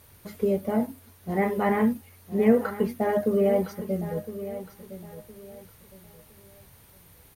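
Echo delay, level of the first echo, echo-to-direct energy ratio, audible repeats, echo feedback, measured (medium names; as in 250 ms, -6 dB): 1012 ms, -13.0 dB, -12.5 dB, 3, 29%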